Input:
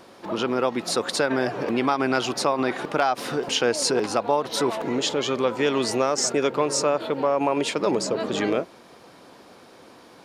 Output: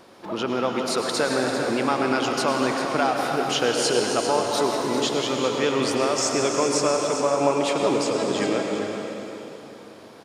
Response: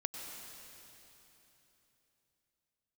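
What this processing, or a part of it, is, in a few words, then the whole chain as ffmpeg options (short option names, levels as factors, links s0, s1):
cave: -filter_complex "[0:a]aecho=1:1:397:0.316[s0];[1:a]atrim=start_sample=2205[s1];[s0][s1]afir=irnorm=-1:irlink=0"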